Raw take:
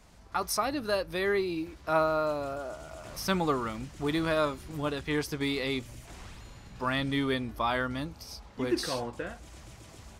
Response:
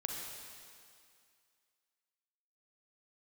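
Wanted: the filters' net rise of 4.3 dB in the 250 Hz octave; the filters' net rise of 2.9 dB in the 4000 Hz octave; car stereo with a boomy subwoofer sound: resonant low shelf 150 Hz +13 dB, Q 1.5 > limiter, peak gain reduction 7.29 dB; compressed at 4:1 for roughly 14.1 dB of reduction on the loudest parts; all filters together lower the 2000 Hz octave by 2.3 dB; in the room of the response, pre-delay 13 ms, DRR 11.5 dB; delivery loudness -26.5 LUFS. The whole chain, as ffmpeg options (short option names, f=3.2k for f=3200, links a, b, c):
-filter_complex "[0:a]equalizer=f=250:t=o:g=8,equalizer=f=2k:t=o:g=-4,equalizer=f=4k:t=o:g=4.5,acompressor=threshold=-36dB:ratio=4,asplit=2[a][b];[1:a]atrim=start_sample=2205,adelay=13[c];[b][c]afir=irnorm=-1:irlink=0,volume=-13dB[d];[a][d]amix=inputs=2:normalize=0,lowshelf=f=150:t=q:w=1.5:g=13,volume=12dB,alimiter=limit=-17dB:level=0:latency=1"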